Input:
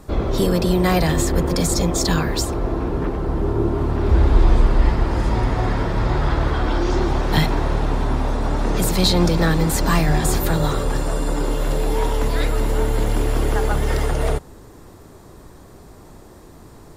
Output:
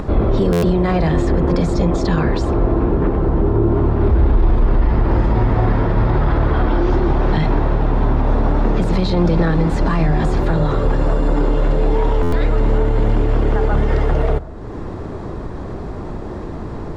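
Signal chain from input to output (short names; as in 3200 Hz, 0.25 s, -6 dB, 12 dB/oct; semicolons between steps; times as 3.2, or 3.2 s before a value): upward compressor, threshold -23 dBFS; limiter -13.5 dBFS, peak gain reduction 10 dB; tape spacing loss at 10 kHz 29 dB; reverb RT60 1.5 s, pre-delay 5 ms, DRR 16.5 dB; stuck buffer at 0.52/12.22, samples 512, times 8; gain +7.5 dB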